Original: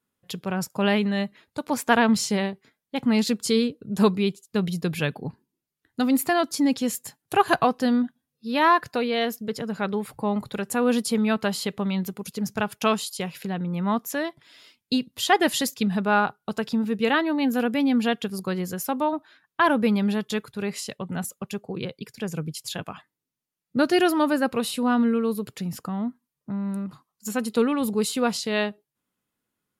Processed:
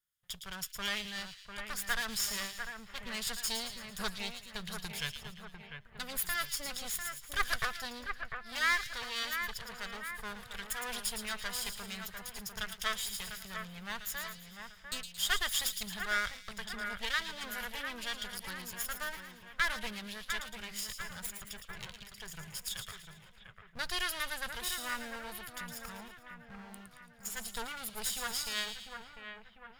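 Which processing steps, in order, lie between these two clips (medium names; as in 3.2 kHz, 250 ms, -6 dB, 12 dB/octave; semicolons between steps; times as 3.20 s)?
comb filter that takes the minimum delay 0.58 ms; amplifier tone stack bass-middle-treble 10-0-10; two-band feedback delay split 2.6 kHz, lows 698 ms, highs 112 ms, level -7 dB; trim -2.5 dB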